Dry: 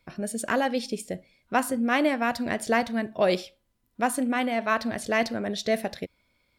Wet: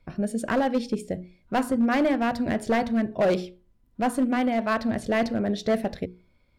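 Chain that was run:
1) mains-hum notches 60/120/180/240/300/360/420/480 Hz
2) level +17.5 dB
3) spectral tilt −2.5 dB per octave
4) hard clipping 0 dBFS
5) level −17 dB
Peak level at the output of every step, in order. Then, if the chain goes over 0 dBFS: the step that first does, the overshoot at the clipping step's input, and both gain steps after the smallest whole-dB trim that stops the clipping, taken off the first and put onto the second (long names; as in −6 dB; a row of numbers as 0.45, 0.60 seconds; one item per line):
−10.5, +7.0, +9.0, 0.0, −17.0 dBFS
step 2, 9.0 dB
step 2 +8.5 dB, step 5 −8 dB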